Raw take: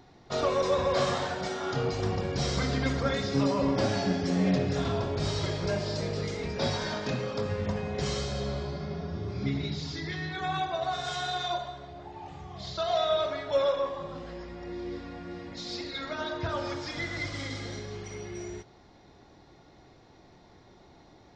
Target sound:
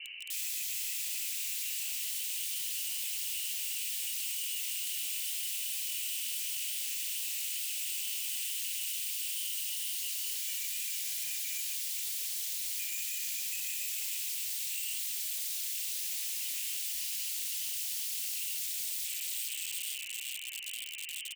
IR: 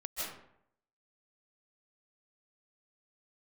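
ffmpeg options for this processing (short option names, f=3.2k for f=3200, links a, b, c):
-filter_complex "[0:a]highpass=f=50:p=1,lowpass=f=2.6k:t=q:w=0.5098,lowpass=f=2.6k:t=q:w=0.6013,lowpass=f=2.6k:t=q:w=0.9,lowpass=f=2.6k:t=q:w=2.563,afreqshift=-3100,flanger=delay=15:depth=6.5:speed=2.2,alimiter=level_in=2dB:limit=-24dB:level=0:latency=1:release=215,volume=-2dB,highshelf=f=2.3k:g=8.5,acompressor=threshold=-29dB:ratio=16,asplit=2[a][b];[b]aecho=0:1:446|892|1338|1784|2230|2676|3122:0.531|0.297|0.166|0.0932|0.0522|0.0292|0.0164[c];[a][c]amix=inputs=2:normalize=0,asoftclip=type=hard:threshold=-35dB,flanger=delay=8:depth=9.7:regen=-4:speed=0.7:shape=triangular,aeval=exprs='(mod(266*val(0)+1,2)-1)/266':c=same,aexciter=amount=15.3:drive=3.1:freq=2k,volume=-8dB"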